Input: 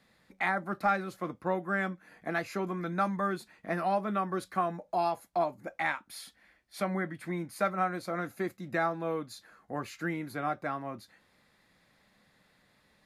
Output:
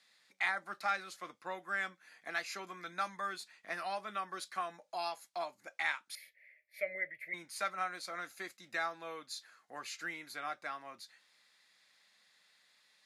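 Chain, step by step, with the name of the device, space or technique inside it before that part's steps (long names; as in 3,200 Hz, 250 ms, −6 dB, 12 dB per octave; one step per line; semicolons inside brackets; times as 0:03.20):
piezo pickup straight into a mixer (low-pass filter 5,900 Hz 12 dB per octave; first difference)
0:06.15–0:07.34: drawn EQ curve 130 Hz 0 dB, 250 Hz −16 dB, 610 Hz +10 dB, 860 Hz −29 dB, 1,400 Hz −19 dB, 2,100 Hz +10 dB, 3,300 Hz −18 dB, 8,400 Hz −22 dB, 13,000 Hz +2 dB
level +9.5 dB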